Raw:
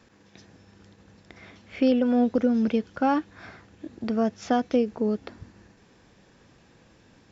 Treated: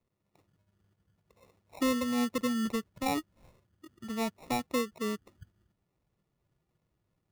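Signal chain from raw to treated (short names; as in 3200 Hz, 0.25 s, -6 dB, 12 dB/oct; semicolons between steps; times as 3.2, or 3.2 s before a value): per-bin expansion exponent 1.5; sample-and-hold 28×; gain -6.5 dB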